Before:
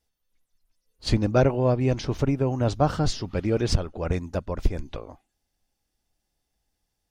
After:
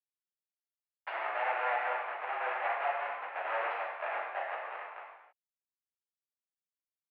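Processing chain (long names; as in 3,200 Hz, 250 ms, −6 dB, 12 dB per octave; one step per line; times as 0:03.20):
comparator with hysteresis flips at −25 dBFS
single-sideband voice off tune +110 Hz 600–2,300 Hz
reverb whose tail is shaped and stops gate 350 ms falling, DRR −6 dB
level −3.5 dB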